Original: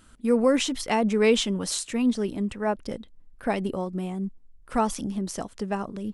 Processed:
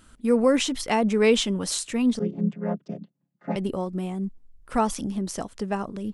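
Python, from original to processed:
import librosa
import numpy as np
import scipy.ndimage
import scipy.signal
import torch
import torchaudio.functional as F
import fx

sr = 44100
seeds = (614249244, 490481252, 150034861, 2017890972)

y = fx.chord_vocoder(x, sr, chord='major triad', root=49, at=(2.19, 3.56))
y = y * 10.0 ** (1.0 / 20.0)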